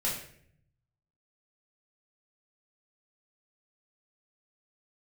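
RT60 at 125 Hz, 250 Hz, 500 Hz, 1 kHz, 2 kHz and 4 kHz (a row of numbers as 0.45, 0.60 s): 1.4, 0.95, 0.75, 0.50, 0.60, 0.50 s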